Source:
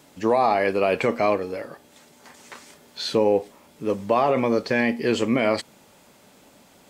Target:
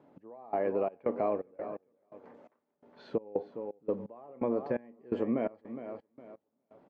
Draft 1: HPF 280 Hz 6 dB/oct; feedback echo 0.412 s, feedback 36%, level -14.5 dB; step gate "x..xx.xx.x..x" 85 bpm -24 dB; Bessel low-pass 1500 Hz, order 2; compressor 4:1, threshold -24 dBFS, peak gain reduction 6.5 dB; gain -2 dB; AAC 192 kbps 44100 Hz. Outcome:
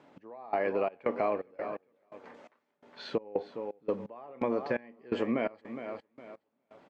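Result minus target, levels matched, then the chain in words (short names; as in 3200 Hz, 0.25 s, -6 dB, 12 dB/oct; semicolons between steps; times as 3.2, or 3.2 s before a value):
2000 Hz band +9.0 dB
HPF 280 Hz 6 dB/oct; feedback echo 0.412 s, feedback 36%, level -14.5 dB; step gate "x..xx.xx.x..x" 85 bpm -24 dB; Bessel low-pass 630 Hz, order 2; compressor 4:1, threshold -24 dBFS, peak gain reduction 4.5 dB; gain -2 dB; AAC 192 kbps 44100 Hz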